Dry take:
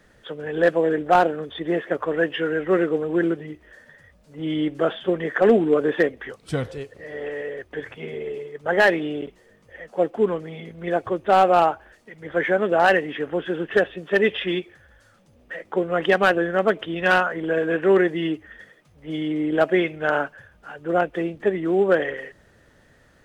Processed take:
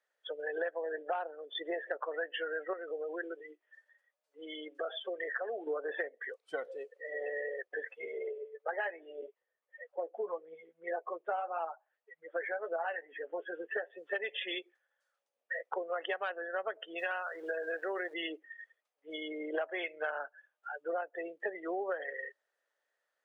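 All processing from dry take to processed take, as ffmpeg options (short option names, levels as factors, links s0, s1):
-filter_complex "[0:a]asettb=1/sr,asplit=3[s0][s1][s2];[s0]atrim=end=2.734[s3];[s1]atrim=start=2.73:end=5.67,asetpts=PTS-STARTPTS,afade=t=in:d=0.004:c=qsin,afade=t=out:st=2.936:d=0.004:c=qsin,lowshelf=f=160:g=-11.5,acompressor=threshold=0.0447:ratio=3:attack=3.2:release=140:knee=1:detection=peak[s4];[s2]atrim=start=5.666[s5];[s3][s4]acrossfade=d=0.004:c1=hsin:c2=qsin[s6];[s6][s5]acrossfade=d=0.004:c1=qsin:c2=hsin,asettb=1/sr,asplit=3[s7][s8][s9];[s7]atrim=end=8.314[s10];[s8]atrim=start=8.31:end=13.9,asetpts=PTS-STARTPTS,afade=t=in:d=0.004:c=qsin,afade=t=out:st=5.586:d=0.004:c=qsin,lowpass=3100,flanger=delay=0:depth=5.7:regen=56:speed=1.8:shape=triangular,asplit=2[s11][s12];[s12]adelay=12,volume=0.422[s13];[s11][s13]amix=inputs=2:normalize=0,atrim=end_sample=246519[s14];[s9]atrim=start=13.896[s15];[s10][s14]acrossfade=d=0.004:c1=hsin:c2=qsin[s16];[s16][s15]acrossfade=d=0.004:c1=qsin:c2=hsin,asettb=1/sr,asplit=3[s17][s18][s19];[s17]atrim=end=16.984[s20];[s18]atrim=start=16.98:end=18.14,asetpts=PTS-STARTPTS,afade=t=in:d=0.004:c=qsin,afade=t=out:st=1.156:d=0.004:c=qsin,acompressor=threshold=0.0447:ratio=1.5:attack=3.2:release=140:knee=1:detection=peak,aeval=exprs='val(0)*gte(abs(val(0)),0.0168)':c=same[s21];[s19]atrim=start=18.136[s22];[s20][s21]acrossfade=d=0.004:c1=hsin:c2=qsin[s23];[s23][s22]acrossfade=d=0.004:c1=qsin:c2=hsin,asettb=1/sr,asplit=3[s24][s25][s26];[s24]atrim=end=19.544[s27];[s25]atrim=start=19.54:end=20.11,asetpts=PTS-STARTPTS,afade=t=in:d=0.004:c=qsin,afade=t=out:st=0.566:d=0.004:c=qsin,aeval=exprs='if(lt(val(0),0),0.708*val(0),val(0))':c=same,acontrast=28[s28];[s26]atrim=start=20.106[s29];[s27][s28]acrossfade=d=0.004:c1=hsin:c2=qsin[s30];[s30][s29]acrossfade=d=0.004:c1=qsin:c2=hsin,afftdn=nr=25:nf=-31,highpass=f=530:w=0.5412,highpass=f=530:w=1.3066,acompressor=threshold=0.0224:ratio=10"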